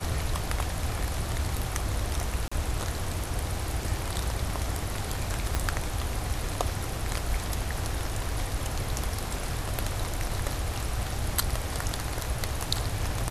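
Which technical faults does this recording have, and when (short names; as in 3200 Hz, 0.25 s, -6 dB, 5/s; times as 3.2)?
2.48–2.52 gap 35 ms
5.55 pop -12 dBFS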